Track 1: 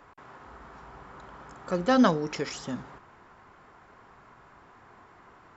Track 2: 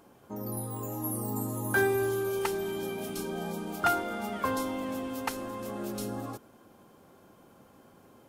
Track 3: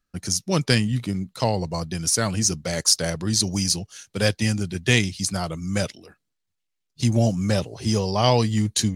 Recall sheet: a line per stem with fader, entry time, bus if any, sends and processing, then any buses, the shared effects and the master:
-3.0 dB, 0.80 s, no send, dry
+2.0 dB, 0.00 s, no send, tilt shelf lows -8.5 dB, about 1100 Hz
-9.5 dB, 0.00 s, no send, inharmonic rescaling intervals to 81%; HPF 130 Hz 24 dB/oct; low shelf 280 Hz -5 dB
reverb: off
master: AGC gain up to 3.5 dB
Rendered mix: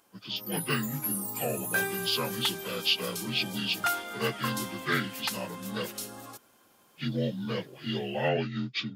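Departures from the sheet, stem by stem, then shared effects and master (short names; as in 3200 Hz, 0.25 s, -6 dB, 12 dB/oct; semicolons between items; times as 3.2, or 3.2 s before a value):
stem 1: muted; stem 2 +2.0 dB -> -7.0 dB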